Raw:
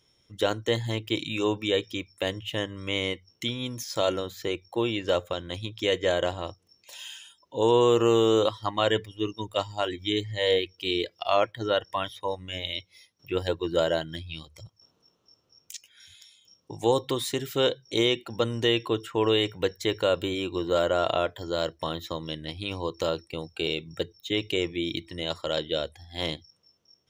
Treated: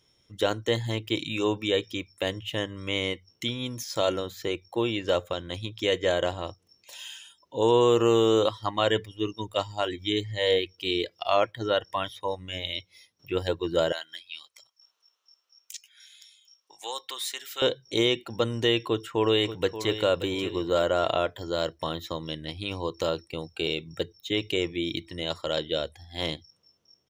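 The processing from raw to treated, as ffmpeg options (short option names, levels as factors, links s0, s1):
-filter_complex "[0:a]asettb=1/sr,asplit=3[s0][s1][s2];[s0]atrim=end=13.924[s3];[s1]atrim=start=13.92:end=17.62,asetpts=PTS-STARTPTS,afade=t=in:d=0.004:c=qsin,afade=t=out:st=3.696:d=0.004:c=qsin,highpass=1300[s4];[s2]atrim=start=17.616[s5];[s3][s4]acrossfade=d=0.004:c1=hsin:c2=qsin[s6];[s6][s5]acrossfade=d=0.004:c1=qsin:c2=hsin,asplit=2[s7][s8];[s8]afade=t=in:st=18.86:d=0.01,afade=t=out:st=19.94:d=0.01,aecho=0:1:580|1160|1740:0.266073|0.0798218|0.0239465[s9];[s7][s9]amix=inputs=2:normalize=0"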